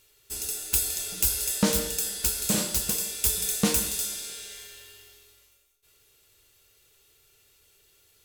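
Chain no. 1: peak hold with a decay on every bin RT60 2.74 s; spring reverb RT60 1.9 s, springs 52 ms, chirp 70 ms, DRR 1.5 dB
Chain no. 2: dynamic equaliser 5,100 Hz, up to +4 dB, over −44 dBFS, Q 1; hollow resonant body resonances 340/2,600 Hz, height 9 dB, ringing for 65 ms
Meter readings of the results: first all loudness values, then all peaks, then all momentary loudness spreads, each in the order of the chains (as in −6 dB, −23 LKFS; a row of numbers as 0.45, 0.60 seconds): −18.5, −24.0 LKFS; −2.5, −2.0 dBFS; 14, 13 LU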